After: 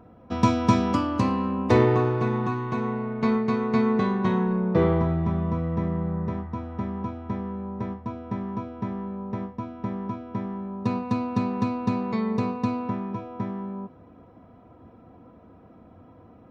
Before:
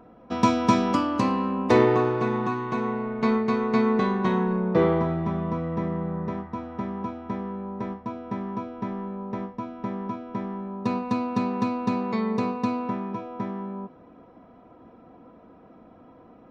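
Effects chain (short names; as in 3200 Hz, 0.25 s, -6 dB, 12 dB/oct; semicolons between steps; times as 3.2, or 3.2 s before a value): bell 90 Hz +13 dB 1.2 oct; gain -2 dB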